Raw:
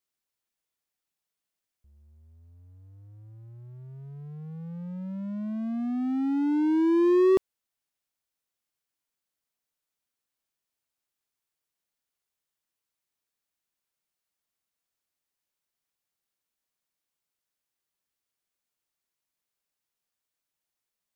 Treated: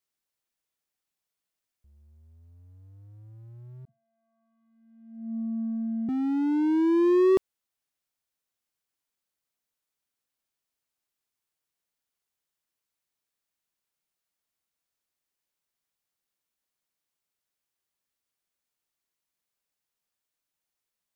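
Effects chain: 3.85–6.09 vocoder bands 32, square 226 Hz

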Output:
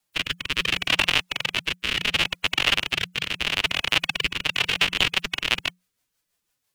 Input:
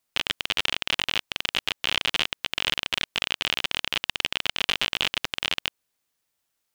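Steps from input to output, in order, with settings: formant-preserving pitch shift +6.5 st; rotary speaker horn 0.7 Hz, later 6 Hz, at 4.09; frequency shift -180 Hz; gain +7 dB

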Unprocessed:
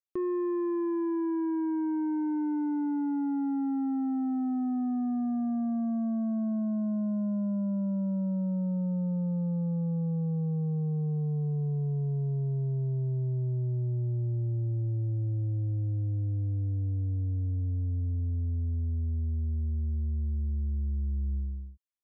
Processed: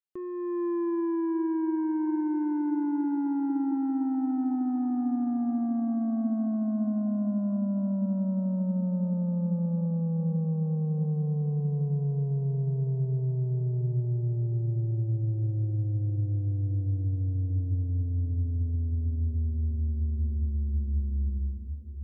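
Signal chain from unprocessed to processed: AGC gain up to 8.5 dB; diffused feedback echo 0.805 s, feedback 58%, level -12.5 dB; gain -7 dB

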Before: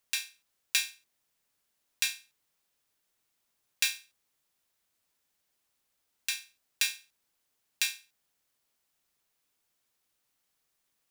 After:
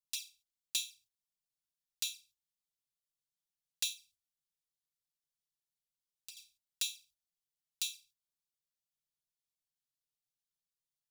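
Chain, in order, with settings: gate -59 dBFS, range -10 dB; inverse Chebyshev band-stop 320–1800 Hz, stop band 40 dB; high shelf 2300 Hz -3 dB; envelope flanger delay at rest 6.6 ms, full sweep at -33 dBFS; 3.93–6.37 compressor 4:1, threshold -51 dBFS, peak gain reduction 13.5 dB

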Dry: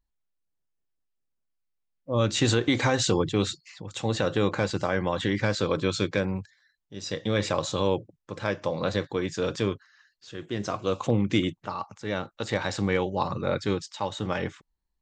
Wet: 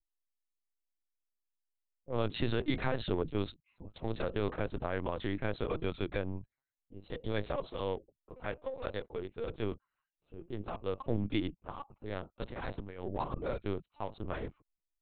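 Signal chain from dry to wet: Wiener smoothing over 25 samples; 7.73–9.49 bell 150 Hz -15 dB 0.96 oct; 12.37–13.17 negative-ratio compressor -30 dBFS, ratio -0.5; LPC vocoder at 8 kHz pitch kept; gain -8 dB

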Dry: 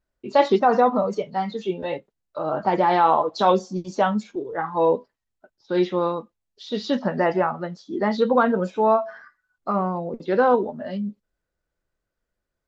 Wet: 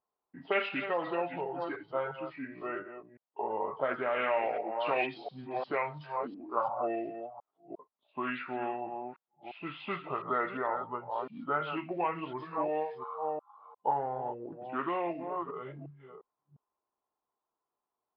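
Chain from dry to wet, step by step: reverse delay 0.246 s, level -10 dB; wide varispeed 0.698×; auto-wah 790–2200 Hz, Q 2.2, up, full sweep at -13.5 dBFS; gain +3 dB

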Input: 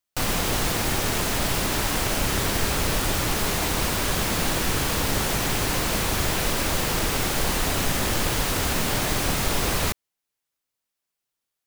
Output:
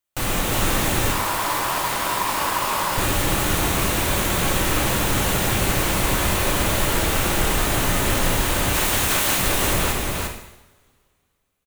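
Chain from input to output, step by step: 8.73–9.37 spectral limiter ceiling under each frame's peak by 21 dB; bell 5000 Hz -6.5 dB 0.43 oct; echo 0.35 s -3 dB; 1.12–2.98 ring modulator 1000 Hz; two-slope reverb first 0.82 s, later 2.6 s, from -24 dB, DRR 2 dB

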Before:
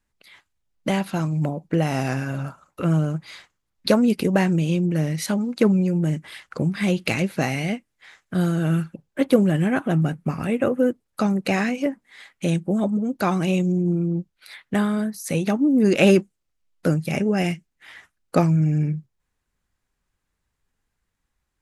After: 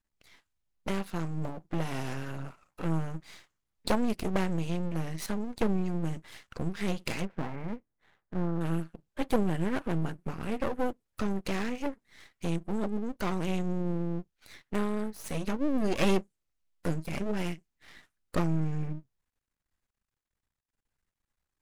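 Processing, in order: 7.25–8.61 Gaussian blur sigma 5.5 samples; half-wave rectifier; gain -5.5 dB

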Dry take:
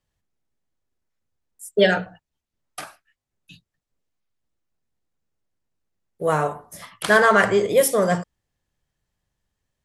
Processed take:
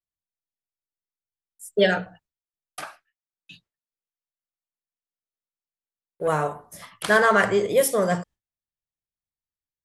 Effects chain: gate with hold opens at -48 dBFS; 2.82–6.28 overdrive pedal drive 12 dB, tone 2800 Hz, clips at -12.5 dBFS; gain -2.5 dB

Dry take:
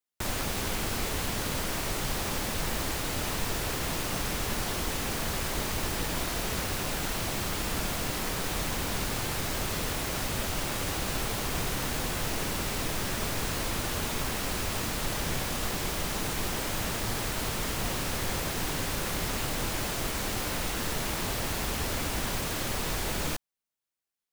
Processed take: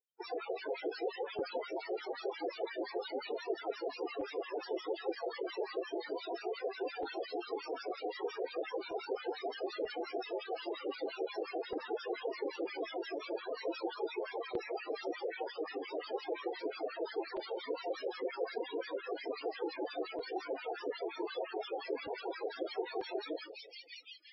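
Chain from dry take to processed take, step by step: HPF 360 Hz 24 dB/oct; high shelf 2800 Hz +4.5 dB; notch 590 Hz, Q 12; on a send: split-band echo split 1800 Hz, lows 0.148 s, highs 0.768 s, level -12 dB; on the sum: harmonic tremolo 5.7 Hz, depth 100%, crossover 850 Hz; in parallel at +2.5 dB: negative-ratio compressor -40 dBFS, ratio -0.5; on the sum: loudest bins only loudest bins 8; crackling interface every 0.94 s, samples 128, zero, from 0.45; MP3 16 kbps 24000 Hz

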